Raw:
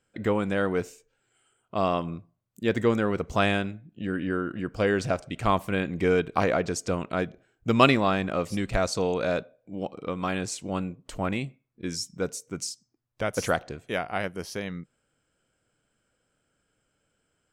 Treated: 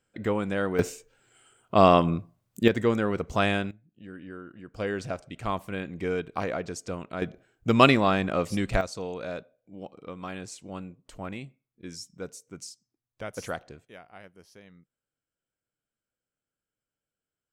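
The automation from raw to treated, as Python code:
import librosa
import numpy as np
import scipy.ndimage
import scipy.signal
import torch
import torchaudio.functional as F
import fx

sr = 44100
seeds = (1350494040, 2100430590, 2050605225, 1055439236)

y = fx.gain(x, sr, db=fx.steps((0.0, -2.0), (0.79, 8.0), (2.68, -1.0), (3.71, -13.5), (4.74, -6.5), (7.22, 1.0), (8.81, -8.5), (13.85, -18.5)))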